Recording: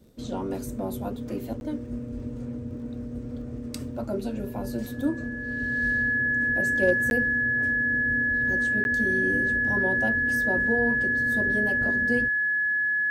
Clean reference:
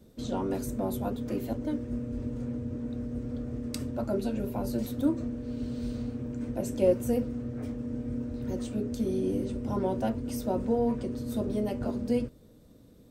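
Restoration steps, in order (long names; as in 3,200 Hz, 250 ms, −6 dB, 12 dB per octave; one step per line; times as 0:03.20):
clipped peaks rebuilt −12.5 dBFS
click removal
notch filter 1,700 Hz, Q 30
repair the gap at 0:01.60/0:07.10/0:08.84, 11 ms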